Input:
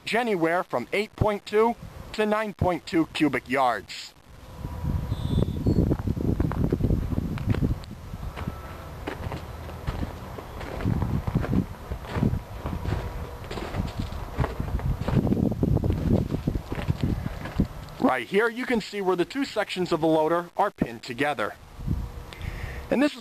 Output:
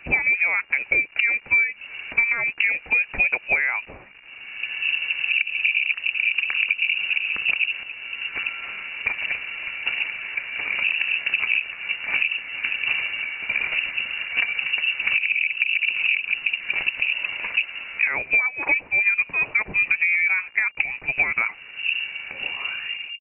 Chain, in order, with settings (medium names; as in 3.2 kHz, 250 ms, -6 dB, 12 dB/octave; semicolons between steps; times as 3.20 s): tape stop on the ending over 0.74 s; peaking EQ 430 Hz +14 dB 0.72 oct; compression 12:1, threshold -19 dBFS, peak gain reduction 15.5 dB; pitch shift +1.5 st; frequency inversion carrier 2.8 kHz; trim +2 dB